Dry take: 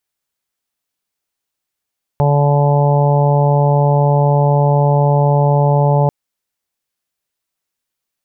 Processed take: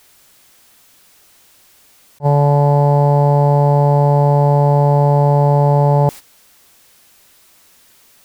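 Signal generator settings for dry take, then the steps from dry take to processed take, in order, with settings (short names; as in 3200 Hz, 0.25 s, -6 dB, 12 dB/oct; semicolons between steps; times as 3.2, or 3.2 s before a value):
steady additive tone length 3.89 s, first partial 144 Hz, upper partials -20/-9.5/-6.5/-11.5/-7.5/-19.5 dB, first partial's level -11 dB
zero-crossing step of -30.5 dBFS; gate -24 dBFS, range -13 dB; attack slew limiter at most 520 dB/s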